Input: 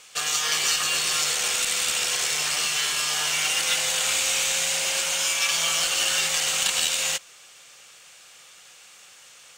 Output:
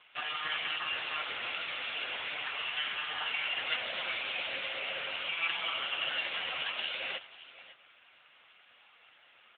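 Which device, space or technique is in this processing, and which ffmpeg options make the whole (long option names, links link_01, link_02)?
satellite phone: -af "highpass=340,lowpass=3400,aecho=1:1:551:0.15,volume=-2.5dB" -ar 8000 -c:a libopencore_amrnb -b:a 6700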